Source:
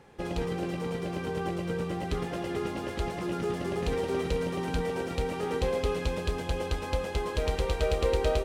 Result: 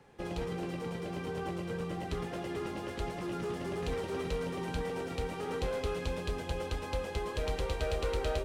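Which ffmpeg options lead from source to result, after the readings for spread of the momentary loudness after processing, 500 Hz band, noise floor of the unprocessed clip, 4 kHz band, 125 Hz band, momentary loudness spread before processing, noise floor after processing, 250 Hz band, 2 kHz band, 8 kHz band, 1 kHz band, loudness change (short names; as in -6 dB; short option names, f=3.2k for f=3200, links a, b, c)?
4 LU, -5.5 dB, -36 dBFS, -4.5 dB, -5.0 dB, 5 LU, -41 dBFS, -5.0 dB, -4.0 dB, -4.5 dB, -4.5 dB, -5.0 dB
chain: -filter_complex "[0:a]flanger=delay=6.7:depth=3:regen=-73:speed=1.6:shape=sinusoidal,acrossover=split=140|790[a][b][c];[b]volume=34dB,asoftclip=hard,volume=-34dB[d];[a][d][c]amix=inputs=3:normalize=0"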